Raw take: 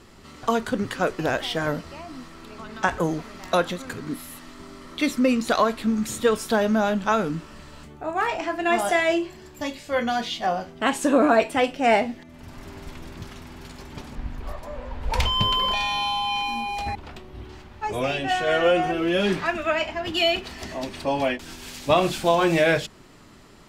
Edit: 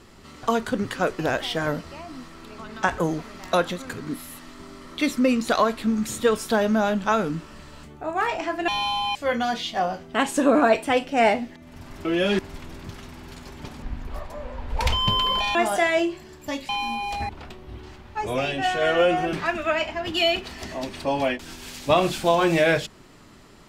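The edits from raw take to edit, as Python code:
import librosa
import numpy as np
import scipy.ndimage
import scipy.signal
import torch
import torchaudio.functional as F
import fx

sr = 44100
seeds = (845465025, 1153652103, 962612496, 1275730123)

y = fx.edit(x, sr, fx.swap(start_s=8.68, length_s=1.14, other_s=15.88, other_length_s=0.47),
    fx.move(start_s=18.99, length_s=0.34, to_s=12.72), tone=tone)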